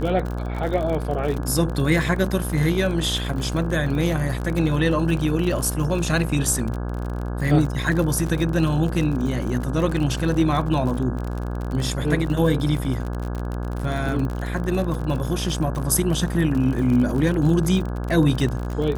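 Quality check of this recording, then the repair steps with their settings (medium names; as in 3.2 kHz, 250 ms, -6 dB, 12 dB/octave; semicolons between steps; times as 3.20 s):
buzz 60 Hz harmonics 28 -27 dBFS
crackle 51 per s -27 dBFS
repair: de-click; de-hum 60 Hz, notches 28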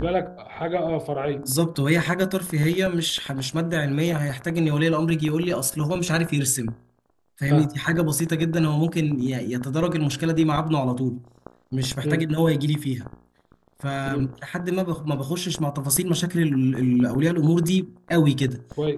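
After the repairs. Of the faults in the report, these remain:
nothing left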